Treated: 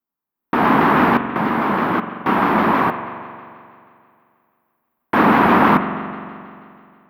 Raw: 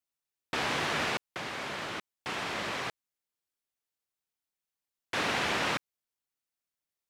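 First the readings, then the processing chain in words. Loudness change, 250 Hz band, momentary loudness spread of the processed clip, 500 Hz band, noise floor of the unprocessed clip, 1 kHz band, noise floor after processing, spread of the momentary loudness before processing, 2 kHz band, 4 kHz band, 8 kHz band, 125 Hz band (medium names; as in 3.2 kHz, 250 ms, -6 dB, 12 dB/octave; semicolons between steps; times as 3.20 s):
+16.0 dB, +24.5 dB, 18 LU, +17.0 dB, under -85 dBFS, +20.0 dB, -85 dBFS, 9 LU, +12.0 dB, +0.5 dB, no reading, +19.0 dB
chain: FFT filter 130 Hz 0 dB, 220 Hz +14 dB, 560 Hz 0 dB, 1 kHz +9 dB, 7.5 kHz -28 dB, 14 kHz +4 dB; level rider gain up to 13.5 dB; spring tank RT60 2.4 s, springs 43 ms, chirp 70 ms, DRR 8.5 dB; vibrato with a chosen wave saw down 6.2 Hz, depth 100 cents; trim +1 dB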